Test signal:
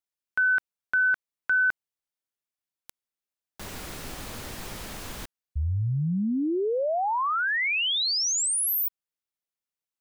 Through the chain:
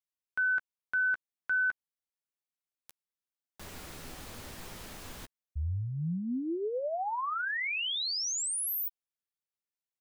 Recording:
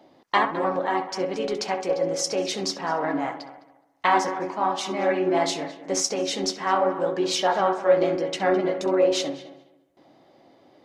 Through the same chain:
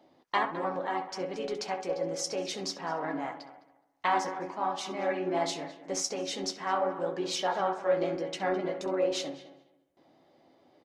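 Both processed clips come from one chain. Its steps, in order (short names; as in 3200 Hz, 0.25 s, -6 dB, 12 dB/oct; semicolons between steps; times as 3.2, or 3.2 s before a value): doubler 12 ms -12 dB; gain -7.5 dB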